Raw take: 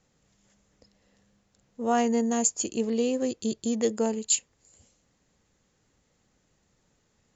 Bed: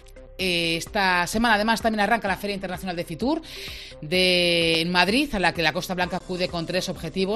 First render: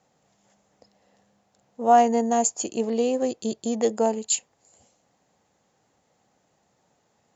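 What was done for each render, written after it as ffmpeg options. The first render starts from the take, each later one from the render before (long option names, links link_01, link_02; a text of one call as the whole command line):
ffmpeg -i in.wav -af "highpass=110,equalizer=frequency=750:width_type=o:width=0.88:gain=11.5" out.wav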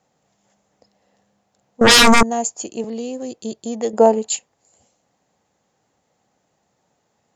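ffmpeg -i in.wav -filter_complex "[0:a]asettb=1/sr,asplit=3[link_01][link_02][link_03];[link_01]atrim=end=1.814[link_04];[link_02]atrim=start=1.81:end=2.23,asetpts=PTS-STARTPTS,afade=type=in:duration=0.004:curve=qsin,afade=type=out:start_time=0.416:duration=0.004:curve=qsin,aeval=exprs='0.473*sin(PI/2*7.94*val(0)/0.473)':channel_layout=same[link_05];[link_03]atrim=start=2.226[link_06];[link_04][link_05]acrossfade=duration=0.004:curve1=hsin:curve2=qsin[link_07];[link_07][link_06]acrossfade=duration=0.004:curve1=qsin:curve2=hsin,asettb=1/sr,asplit=3[link_08][link_09][link_10];[link_08]atrim=end=2.844[link_11];[link_09]atrim=start=2.84:end=3.39,asetpts=PTS-STARTPTS,afade=type=in:duration=0.004:curve=qsin,afade=type=out:start_time=0.546:duration=0.004:curve=qsin,acrossover=split=310|3000[link_12][link_13][link_14];[link_13]acompressor=threshold=-31dB:ratio=6:attack=3.2:release=140:knee=2.83:detection=peak[link_15];[link_12][link_15][link_14]amix=inputs=3:normalize=0[link_16];[link_10]atrim=start=3.386[link_17];[link_11][link_16]acrossfade=duration=0.004:curve1=hsin:curve2=qsin[link_18];[link_18][link_17]acrossfade=duration=0.004:curve1=qsin:curve2=hsin,asettb=1/sr,asplit=3[link_19][link_20][link_21];[link_19]atrim=end=3.934[link_22];[link_20]atrim=start=3.93:end=4.37,asetpts=PTS-STARTPTS,afade=type=in:duration=0.004:curve=qsin,afade=type=out:start_time=0.436:duration=0.004:curve=qsin,equalizer=frequency=540:width=0.31:gain=11[link_23];[link_21]atrim=start=4.366[link_24];[link_22][link_23]acrossfade=duration=0.004:curve1=hsin:curve2=qsin[link_25];[link_25][link_24]acrossfade=duration=0.004:curve1=qsin:curve2=hsin" out.wav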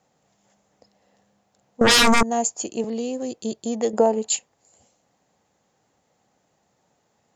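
ffmpeg -i in.wav -af "acompressor=threshold=-16dB:ratio=2.5" out.wav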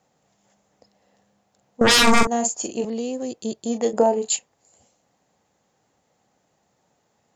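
ffmpeg -i in.wav -filter_complex "[0:a]asettb=1/sr,asplit=3[link_01][link_02][link_03];[link_01]atrim=end=2.034[link_04];[link_02]atrim=start=2.03:end=2.85,asetpts=PTS-STARTPTS,afade=type=in:duration=0.004:curve=qsin,afade=type=out:start_time=0.816:duration=0.004:curve=qsin,asplit=2[link_05][link_06];[link_06]adelay=42,volume=-6dB[link_07];[link_05][link_07]amix=inputs=2:normalize=0,atrim=end_sample=36162[link_08];[link_03]atrim=start=2.846[link_09];[link_04][link_08]acrossfade=duration=0.004:curve1=hsin:curve2=qsin[link_10];[link_10][link_09]acrossfade=duration=0.004:curve1=qsin:curve2=hsin,asettb=1/sr,asplit=3[link_11][link_12][link_13];[link_11]atrim=end=3.624[link_14];[link_12]atrim=start=3.62:end=4.36,asetpts=PTS-STARTPTS,afade=type=in:duration=0.004:curve=qsin,afade=type=out:start_time=0.736:duration=0.004:curve=qsin,asplit=2[link_15][link_16];[link_16]adelay=30,volume=-9dB[link_17];[link_15][link_17]amix=inputs=2:normalize=0,atrim=end_sample=32634[link_18];[link_13]atrim=start=4.356[link_19];[link_14][link_18]acrossfade=duration=0.004:curve1=hsin:curve2=qsin[link_20];[link_20][link_19]acrossfade=duration=0.004:curve1=qsin:curve2=hsin" out.wav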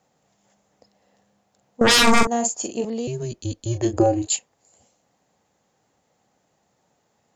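ffmpeg -i in.wav -filter_complex "[0:a]asettb=1/sr,asplit=3[link_01][link_02][link_03];[link_01]atrim=end=3.074[link_04];[link_02]atrim=start=3.07:end=4.27,asetpts=PTS-STARTPTS,afade=type=in:duration=0.004:curve=qsin,afade=type=out:start_time=1.196:duration=0.004:curve=qsin,afreqshift=-120[link_05];[link_03]atrim=start=4.266[link_06];[link_04][link_05]acrossfade=duration=0.004:curve1=hsin:curve2=qsin[link_07];[link_07][link_06]acrossfade=duration=0.004:curve1=qsin:curve2=hsin" out.wav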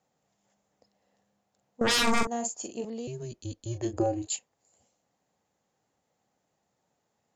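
ffmpeg -i in.wav -af "volume=-9.5dB" out.wav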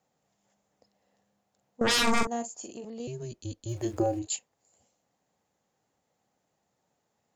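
ffmpeg -i in.wav -filter_complex "[0:a]asettb=1/sr,asplit=3[link_01][link_02][link_03];[link_01]atrim=end=2.424[link_04];[link_02]atrim=start=2.42:end=3,asetpts=PTS-STARTPTS,afade=type=in:duration=0.004:curve=qsin,afade=type=out:start_time=0.576:duration=0.004:curve=qsin,acompressor=threshold=-37dB:ratio=5:attack=3.2:release=140:knee=1:detection=peak[link_05];[link_03]atrim=start=2.996[link_06];[link_04][link_05]acrossfade=duration=0.004:curve1=hsin:curve2=qsin[link_07];[link_07][link_06]acrossfade=duration=0.004:curve1=qsin:curve2=hsin,asettb=1/sr,asplit=3[link_08][link_09][link_10];[link_08]atrim=end=3.694[link_11];[link_09]atrim=start=3.69:end=4.19,asetpts=PTS-STARTPTS,afade=type=in:duration=0.004:curve=qsin,afade=type=out:start_time=0.496:duration=0.004:curve=qsin,aeval=exprs='val(0)*gte(abs(val(0)),0.00316)':channel_layout=same[link_12];[link_10]atrim=start=4.186[link_13];[link_11][link_12]acrossfade=duration=0.004:curve1=hsin:curve2=qsin[link_14];[link_14][link_13]acrossfade=duration=0.004:curve1=qsin:curve2=hsin" out.wav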